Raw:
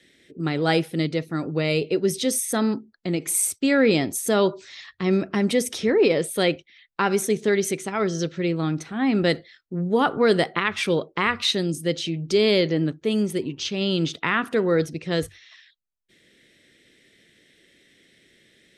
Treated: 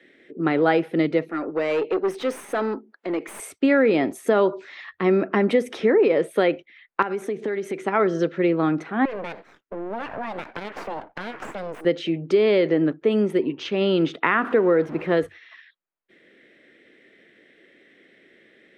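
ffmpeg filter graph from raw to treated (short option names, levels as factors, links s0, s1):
-filter_complex "[0:a]asettb=1/sr,asplit=3[s0][s1][s2];[s0]atrim=end=1.294[s3];[s1]atrim=start=1.29:end=3.4,asetpts=PTS-STARTPTS,afade=t=in:d=0.004:c=qsin,afade=t=out:st=2.106:d=0.004:c=qsin,highpass=320,acompressor=mode=upward:threshold=0.00708:ratio=2.5:attack=3.2:release=140:knee=2.83:detection=peak,aeval=exprs='(tanh(15.8*val(0)+0.35)-tanh(0.35))/15.8':c=same[s4];[s2]atrim=start=3.396[s5];[s3][s4]acrossfade=d=0.004:c1=hsin:c2=qsin[s6];[s6][s5]acrossfade=d=0.004:c1=qsin:c2=hsin,asettb=1/sr,asplit=3[s7][s8][s9];[s7]atrim=end=7.024[s10];[s8]atrim=start=7.02:end=7.79,asetpts=PTS-STARTPTS,afade=t=in:d=0.004:c=qsin,afade=t=out:st=0.766:d=0.004:c=qsin,acompressor=threshold=0.0447:ratio=20:attack=3.2:release=140:knee=1:detection=peak,aeval=exprs='(mod(8.91*val(0)+1,2)-1)/8.91':c=same[s11];[s9]atrim=start=7.786[s12];[s10][s11]acrossfade=d=0.004:c1=hsin:c2=qsin[s13];[s13][s12]acrossfade=d=0.004:c1=qsin:c2=hsin,asettb=1/sr,asplit=3[s14][s15][s16];[s14]atrim=end=9.054[s17];[s15]atrim=start=9.05:end=11.85,asetpts=PTS-STARTPTS,afade=t=in:d=0.004:c=qsin,afade=t=out:st=2.796:d=0.004:c=qsin,asuperstop=centerf=720:order=4:qfactor=1.3,acompressor=threshold=0.0398:ratio=8:attack=3.2:release=140:knee=1:detection=peak,aeval=exprs='abs(val(0))':c=same[s18];[s16]atrim=start=11.846[s19];[s17][s18]acrossfade=d=0.004:c1=hsin:c2=qsin[s20];[s20][s19]acrossfade=d=0.004:c1=qsin:c2=hsin,asettb=1/sr,asplit=3[s21][s22][s23];[s21]atrim=end=14.344[s24];[s22]atrim=start=14.34:end=15.17,asetpts=PTS-STARTPTS,afade=t=in:d=0.004:c=qsin,afade=t=out:st=0.826:d=0.004:c=qsin,aeval=exprs='val(0)+0.5*0.0188*sgn(val(0))':c=same,highshelf=f=4500:g=-11[s25];[s23]atrim=start=15.166[s26];[s24][s25]acrossfade=d=0.004:c1=hsin:c2=qsin[s27];[s27][s26]acrossfade=d=0.004:c1=qsin:c2=hsin,acrossover=split=230 2400:gain=0.126 1 0.0708[s28][s29][s30];[s28][s29][s30]amix=inputs=3:normalize=0,acompressor=threshold=0.0794:ratio=6,volume=2.37"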